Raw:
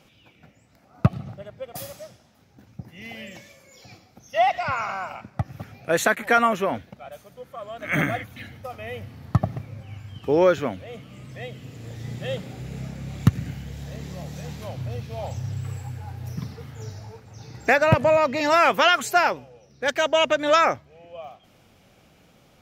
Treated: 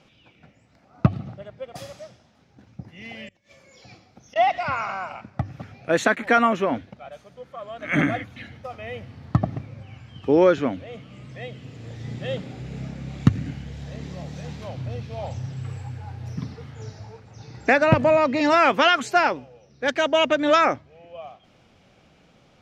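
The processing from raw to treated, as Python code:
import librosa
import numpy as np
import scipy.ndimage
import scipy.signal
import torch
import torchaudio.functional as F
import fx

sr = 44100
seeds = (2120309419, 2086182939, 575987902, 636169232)

y = fx.gate_flip(x, sr, shuts_db=-32.0, range_db=-26, at=(3.28, 4.36))
y = scipy.signal.sosfilt(scipy.signal.butter(2, 5800.0, 'lowpass', fs=sr, output='sos'), y)
y = fx.hum_notches(y, sr, base_hz=50, count=2)
y = fx.dynamic_eq(y, sr, hz=280.0, q=2.3, threshold_db=-43.0, ratio=4.0, max_db=7)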